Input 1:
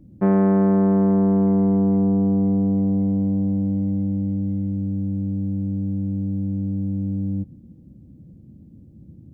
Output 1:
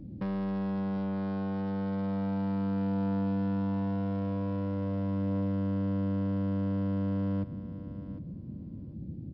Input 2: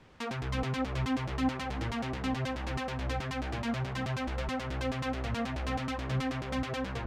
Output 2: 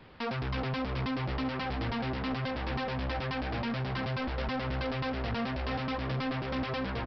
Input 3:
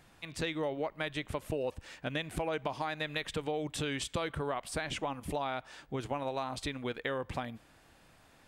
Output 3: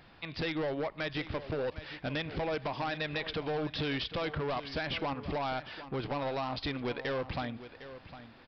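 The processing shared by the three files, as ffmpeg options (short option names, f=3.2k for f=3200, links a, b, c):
-af "lowshelf=f=140:g=-2,acompressor=threshold=-27dB:ratio=6,aresample=11025,asoftclip=type=hard:threshold=-34.5dB,aresample=44100,aecho=1:1:756|1512:0.211|0.0338,volume=4.5dB"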